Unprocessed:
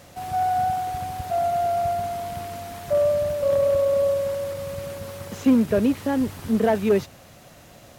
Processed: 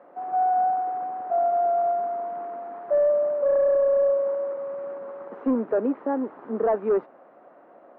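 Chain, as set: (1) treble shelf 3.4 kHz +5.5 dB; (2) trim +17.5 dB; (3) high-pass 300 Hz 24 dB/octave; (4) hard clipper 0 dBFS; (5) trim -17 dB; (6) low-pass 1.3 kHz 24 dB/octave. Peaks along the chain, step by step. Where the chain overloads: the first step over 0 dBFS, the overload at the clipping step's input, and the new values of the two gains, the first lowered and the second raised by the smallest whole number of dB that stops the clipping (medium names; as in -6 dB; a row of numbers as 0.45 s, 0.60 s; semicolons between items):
-8.5 dBFS, +9.0 dBFS, +7.5 dBFS, 0.0 dBFS, -17.0 dBFS, -15.5 dBFS; step 2, 7.5 dB; step 2 +9.5 dB, step 5 -9 dB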